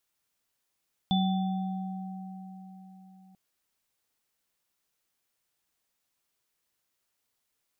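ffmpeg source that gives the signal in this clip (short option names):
-f lavfi -i "aevalsrc='0.075*pow(10,-3*t/4.31)*sin(2*PI*188*t)+0.0335*pow(10,-3*t/3.91)*sin(2*PI*766*t)+0.0335*pow(10,-3*t/0.96)*sin(2*PI*3490*t)':d=2.24:s=44100"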